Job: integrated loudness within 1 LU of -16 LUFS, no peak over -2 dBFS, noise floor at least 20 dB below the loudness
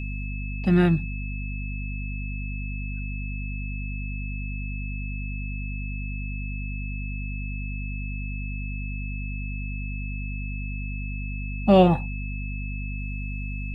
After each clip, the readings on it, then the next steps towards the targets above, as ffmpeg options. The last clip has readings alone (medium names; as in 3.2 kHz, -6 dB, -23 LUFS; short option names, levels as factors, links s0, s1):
hum 50 Hz; highest harmonic 250 Hz; hum level -29 dBFS; steady tone 2.6 kHz; tone level -38 dBFS; loudness -29.0 LUFS; peak level -4.0 dBFS; loudness target -16.0 LUFS
-> -af "bandreject=f=50:t=h:w=4,bandreject=f=100:t=h:w=4,bandreject=f=150:t=h:w=4,bandreject=f=200:t=h:w=4,bandreject=f=250:t=h:w=4"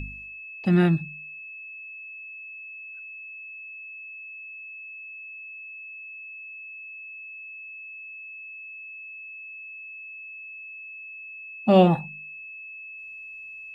hum not found; steady tone 2.6 kHz; tone level -38 dBFS
-> -af "bandreject=f=2600:w=30"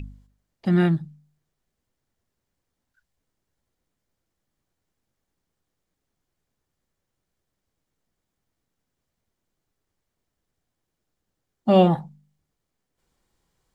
steady tone not found; loudness -21.5 LUFS; peak level -4.0 dBFS; loudness target -16.0 LUFS
-> -af "volume=1.88,alimiter=limit=0.794:level=0:latency=1"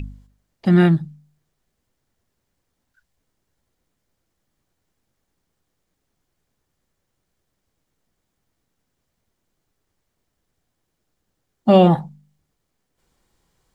loudness -16.5 LUFS; peak level -2.0 dBFS; noise floor -76 dBFS